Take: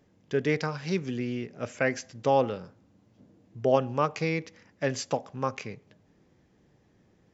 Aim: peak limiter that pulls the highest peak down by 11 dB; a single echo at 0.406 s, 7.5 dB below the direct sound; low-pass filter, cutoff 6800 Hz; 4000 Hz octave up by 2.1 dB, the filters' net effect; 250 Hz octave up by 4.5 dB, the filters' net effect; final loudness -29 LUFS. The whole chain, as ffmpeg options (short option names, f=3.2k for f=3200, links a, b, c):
-af "lowpass=6.8k,equalizer=f=250:t=o:g=5.5,equalizer=f=4k:t=o:g=3.5,alimiter=limit=-18dB:level=0:latency=1,aecho=1:1:406:0.422,volume=2.5dB"